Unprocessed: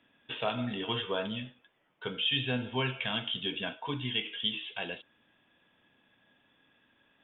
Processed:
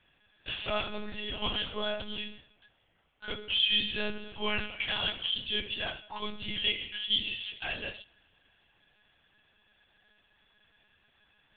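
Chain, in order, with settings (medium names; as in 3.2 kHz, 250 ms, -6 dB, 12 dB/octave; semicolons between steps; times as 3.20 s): time stretch by phase-locked vocoder 1.6×; tilt EQ +2 dB/octave; reverberation, pre-delay 18 ms, DRR 20 dB; monotone LPC vocoder at 8 kHz 210 Hz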